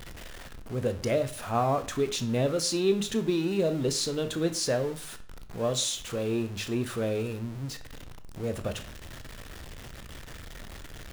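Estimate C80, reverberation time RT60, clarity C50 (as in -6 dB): 18.0 dB, 0.45 s, 14.0 dB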